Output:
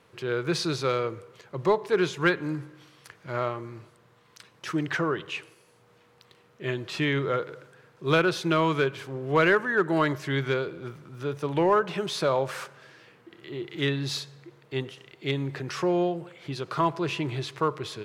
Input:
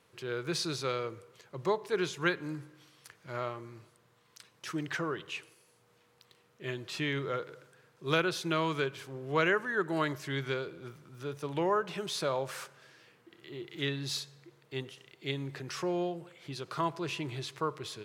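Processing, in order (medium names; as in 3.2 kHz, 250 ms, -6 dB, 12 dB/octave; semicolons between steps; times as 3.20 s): treble shelf 4.2 kHz -8.5 dB; in parallel at -5 dB: hard clipper -24.5 dBFS, distortion -15 dB; on the sum: trim +4 dB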